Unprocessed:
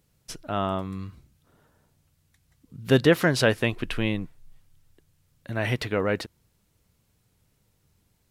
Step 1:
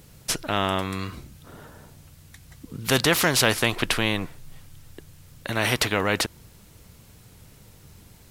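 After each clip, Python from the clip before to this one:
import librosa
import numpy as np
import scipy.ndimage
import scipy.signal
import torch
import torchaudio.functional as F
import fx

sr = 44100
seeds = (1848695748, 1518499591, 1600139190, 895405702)

y = fx.spectral_comp(x, sr, ratio=2.0)
y = y * 10.0 ** (2.0 / 20.0)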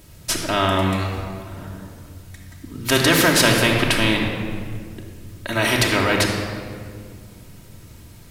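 y = fx.room_shoebox(x, sr, seeds[0], volume_m3=3700.0, walls='mixed', distance_m=2.8)
y = y * 10.0 ** (1.5 / 20.0)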